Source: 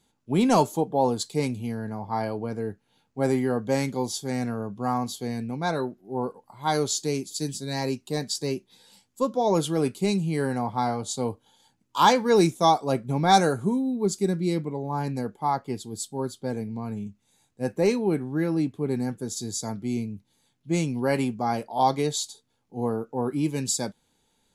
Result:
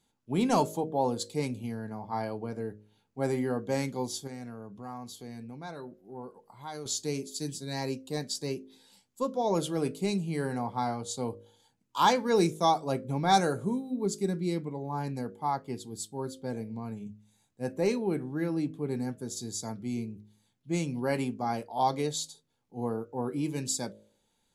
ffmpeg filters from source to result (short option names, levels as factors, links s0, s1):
-filter_complex "[0:a]asettb=1/sr,asplit=3[s0][s1][s2];[s0]atrim=end=4.274[s3];[s1]atrim=start=4.27:end=6.86,asetpts=PTS-STARTPTS,afade=t=in:d=0.004:c=qsin,afade=t=out:st=2.586:d=0.004:c=qsin,acompressor=threshold=0.0112:ratio=2:attack=3.2:release=140:knee=1:detection=peak[s4];[s2]atrim=start=6.856[s5];[s3][s4]acrossfade=d=0.004:c1=hsin:c2=qsin[s6];[s6][s5]acrossfade=d=0.004:c1=qsin:c2=hsin,bandreject=f=52.68:t=h:w=4,bandreject=f=105.36:t=h:w=4,bandreject=f=158.04:t=h:w=4,bandreject=f=210.72:t=h:w=4,bandreject=f=263.4:t=h:w=4,bandreject=f=316.08:t=h:w=4,bandreject=f=368.76:t=h:w=4,bandreject=f=421.44:t=h:w=4,bandreject=f=474.12:t=h:w=4,bandreject=f=526.8:t=h:w=4,bandreject=f=579.48:t=h:w=4,bandreject=f=632.16:t=h:w=4,volume=0.562"